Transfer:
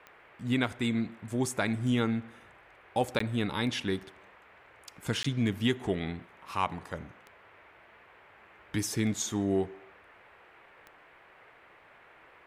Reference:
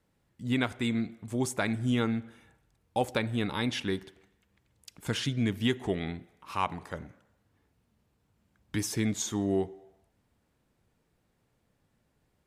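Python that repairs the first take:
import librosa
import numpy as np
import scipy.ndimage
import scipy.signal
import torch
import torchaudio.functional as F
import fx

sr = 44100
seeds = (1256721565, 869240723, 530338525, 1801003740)

y = fx.fix_declick_ar(x, sr, threshold=10.0)
y = fx.fix_interpolate(y, sr, at_s=(3.19, 5.23), length_ms=14.0)
y = fx.noise_reduce(y, sr, print_start_s=11.51, print_end_s=12.01, reduce_db=16.0)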